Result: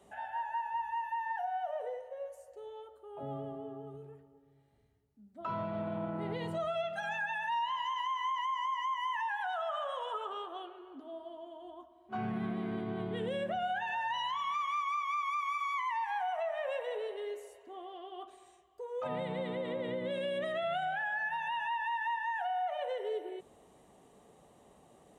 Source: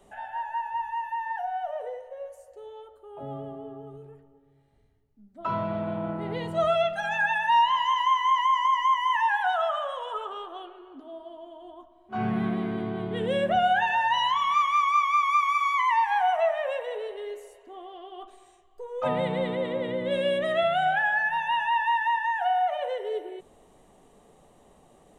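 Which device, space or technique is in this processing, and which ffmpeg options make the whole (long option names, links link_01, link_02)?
podcast mastering chain: -af "highpass=63,acompressor=threshold=-29dB:ratio=2.5,alimiter=level_in=0.5dB:limit=-24dB:level=0:latency=1:release=60,volume=-0.5dB,volume=-3dB" -ar 44100 -c:a libmp3lame -b:a 96k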